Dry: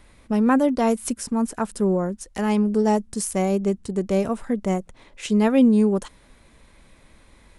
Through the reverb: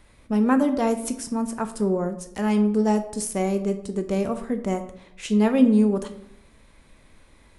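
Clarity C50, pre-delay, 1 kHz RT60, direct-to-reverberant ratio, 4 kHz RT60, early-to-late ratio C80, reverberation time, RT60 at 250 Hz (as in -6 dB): 11.5 dB, 13 ms, 0.70 s, 7.5 dB, 0.45 s, 15.0 dB, 0.70 s, 0.90 s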